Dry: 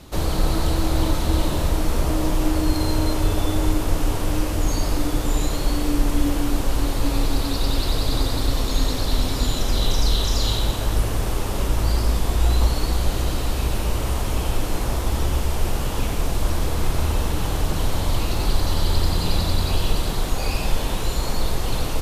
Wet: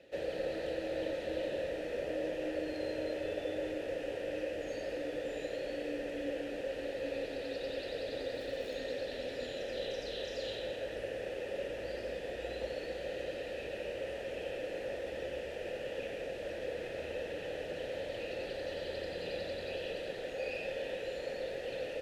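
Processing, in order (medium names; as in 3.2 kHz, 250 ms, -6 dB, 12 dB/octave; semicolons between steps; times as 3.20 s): vowel filter e; 8.33–8.77 s: crackle 230 per s -49 dBFS; trim +1 dB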